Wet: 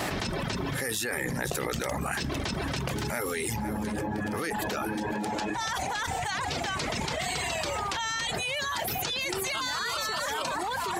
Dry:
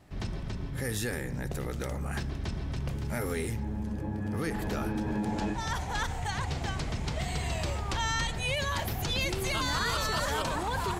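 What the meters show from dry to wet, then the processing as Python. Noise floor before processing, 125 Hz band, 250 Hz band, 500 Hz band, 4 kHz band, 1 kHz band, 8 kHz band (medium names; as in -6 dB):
-36 dBFS, -3.5 dB, +0.5 dB, +3.0 dB, +3.0 dB, +3.5 dB, +5.0 dB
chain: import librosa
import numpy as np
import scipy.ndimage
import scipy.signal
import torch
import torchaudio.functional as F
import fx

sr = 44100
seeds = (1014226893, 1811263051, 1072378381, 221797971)

p1 = fx.dereverb_blind(x, sr, rt60_s=0.79)
p2 = fx.highpass(p1, sr, hz=570.0, slope=6)
p3 = p2 + fx.echo_single(p2, sr, ms=505, db=-21.0, dry=0)
y = fx.env_flatten(p3, sr, amount_pct=100)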